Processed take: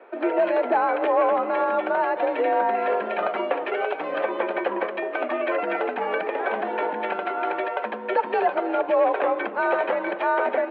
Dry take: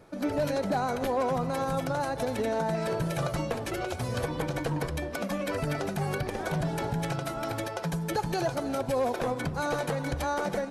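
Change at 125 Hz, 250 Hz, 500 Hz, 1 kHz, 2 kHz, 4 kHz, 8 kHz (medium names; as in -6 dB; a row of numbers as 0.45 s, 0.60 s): under -20 dB, +0.5 dB, +7.5 dB, +9.0 dB, +8.5 dB, -2.0 dB, under -35 dB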